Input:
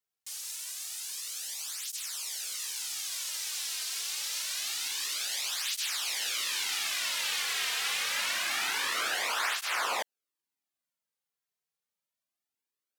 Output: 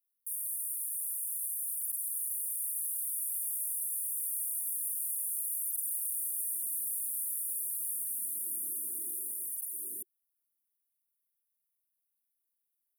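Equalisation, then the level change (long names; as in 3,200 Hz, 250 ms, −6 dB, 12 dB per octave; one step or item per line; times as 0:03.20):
Chebyshev band-stop filter 370–9,500 Hz, order 5
spectral tilt +2.5 dB per octave
0.0 dB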